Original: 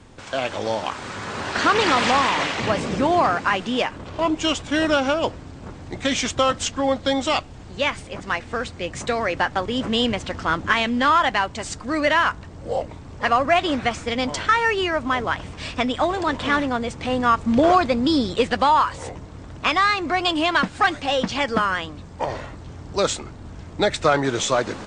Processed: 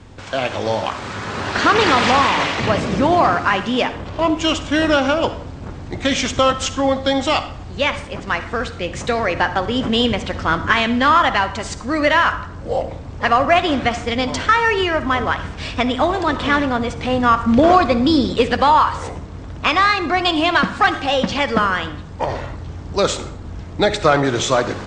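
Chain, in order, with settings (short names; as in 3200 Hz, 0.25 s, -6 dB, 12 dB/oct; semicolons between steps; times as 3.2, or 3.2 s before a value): LPF 7200 Hz 12 dB/oct; bell 69 Hz +4 dB 2.1 oct; reverb RT60 0.70 s, pre-delay 42 ms, DRR 11.5 dB; gain +3.5 dB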